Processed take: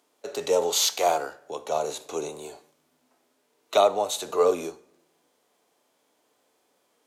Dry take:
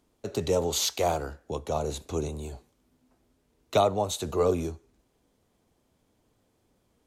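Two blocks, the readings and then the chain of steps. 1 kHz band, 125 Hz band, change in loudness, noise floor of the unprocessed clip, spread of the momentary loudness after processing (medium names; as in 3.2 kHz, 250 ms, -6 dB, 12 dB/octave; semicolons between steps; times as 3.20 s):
+4.0 dB, -16.5 dB, +3.0 dB, -71 dBFS, 16 LU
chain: high-pass 510 Hz 12 dB/octave; simulated room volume 2800 m³, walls furnished, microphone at 0.33 m; harmonic-percussive split percussive -7 dB; trim +8.5 dB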